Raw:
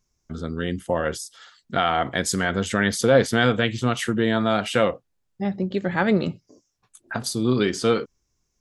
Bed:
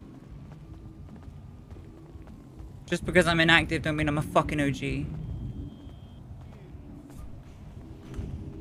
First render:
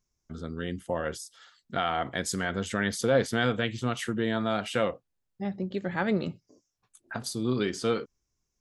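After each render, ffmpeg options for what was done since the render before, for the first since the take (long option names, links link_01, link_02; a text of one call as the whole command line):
ffmpeg -i in.wav -af "volume=-7dB" out.wav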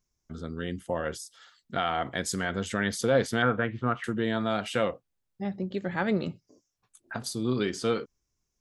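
ffmpeg -i in.wav -filter_complex "[0:a]asettb=1/sr,asplit=3[link_01][link_02][link_03];[link_01]atrim=end=3.424[link_04];[link_02]atrim=start=3.42:end=4.04,asetpts=PTS-STARTPTS,afade=type=in:duration=0.004:curve=qsin,afade=type=out:start_time=0.616:duration=0.004:curve=qsin,lowpass=frequency=1400:width_type=q:width=2[link_05];[link_03]atrim=start=4.036[link_06];[link_04][link_05]acrossfade=duration=0.004:curve1=hsin:curve2=qsin[link_07];[link_07][link_06]acrossfade=duration=0.004:curve1=qsin:curve2=hsin" out.wav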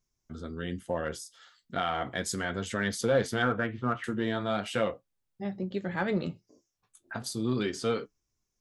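ffmpeg -i in.wav -filter_complex "[0:a]flanger=delay=7.1:depth=6.4:regen=-57:speed=0.38:shape=triangular,asplit=2[link_01][link_02];[link_02]asoftclip=type=hard:threshold=-24.5dB,volume=-9.5dB[link_03];[link_01][link_03]amix=inputs=2:normalize=0" out.wav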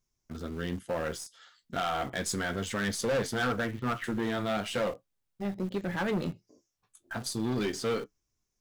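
ffmpeg -i in.wav -filter_complex "[0:a]asplit=2[link_01][link_02];[link_02]acrusher=bits=4:dc=4:mix=0:aa=0.000001,volume=-9dB[link_03];[link_01][link_03]amix=inputs=2:normalize=0,asoftclip=type=hard:threshold=-25dB" out.wav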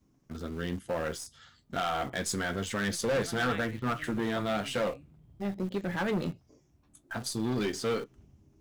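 ffmpeg -i in.wav -i bed.wav -filter_complex "[1:a]volume=-22dB[link_01];[0:a][link_01]amix=inputs=2:normalize=0" out.wav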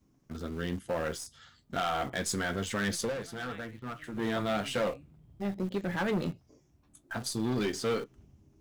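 ffmpeg -i in.wav -filter_complex "[0:a]asplit=3[link_01][link_02][link_03];[link_01]atrim=end=3.15,asetpts=PTS-STARTPTS,afade=type=out:start_time=3.02:duration=0.13:silence=0.354813[link_04];[link_02]atrim=start=3.15:end=4.12,asetpts=PTS-STARTPTS,volume=-9dB[link_05];[link_03]atrim=start=4.12,asetpts=PTS-STARTPTS,afade=type=in:duration=0.13:silence=0.354813[link_06];[link_04][link_05][link_06]concat=n=3:v=0:a=1" out.wav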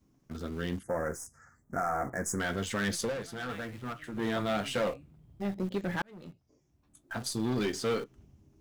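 ffmpeg -i in.wav -filter_complex "[0:a]asettb=1/sr,asplit=3[link_01][link_02][link_03];[link_01]atrim=end=0.834[link_04];[link_02]atrim=start=0.83:end=2.4,asetpts=PTS-STARTPTS,afade=type=in:duration=0.004:curve=qsin,afade=type=out:start_time=1.566:duration=0.004:curve=qsin,asuperstop=centerf=3400:order=8:qfactor=0.85[link_05];[link_03]atrim=start=2.396[link_06];[link_04][link_05]acrossfade=duration=0.004:curve1=hsin:curve2=qsin[link_07];[link_07][link_06]acrossfade=duration=0.004:curve1=qsin:curve2=hsin,asettb=1/sr,asplit=3[link_08][link_09][link_10];[link_08]atrim=end=3.494[link_11];[link_09]atrim=start=3.49:end=3.93,asetpts=PTS-STARTPTS,afade=type=in:duration=0.004:curve=qsin,afade=type=out:start_time=0.436:duration=0.004:curve=qsin,aeval=exprs='val(0)+0.5*0.00473*sgn(val(0))':channel_layout=same[link_12];[link_10]atrim=start=3.926[link_13];[link_11][link_12]acrossfade=duration=0.004:curve1=hsin:curve2=qsin[link_14];[link_14][link_13]acrossfade=duration=0.004:curve1=qsin:curve2=hsin,asplit=2[link_15][link_16];[link_15]atrim=end=6.02,asetpts=PTS-STARTPTS,afade=type=out:start_time=6.016:duration=0.004:curve=hsin[link_17];[link_16]atrim=start=6.02,asetpts=PTS-STARTPTS,afade=type=in:duration=1.21[link_18];[link_17][link_18]concat=n=2:v=0:a=1" out.wav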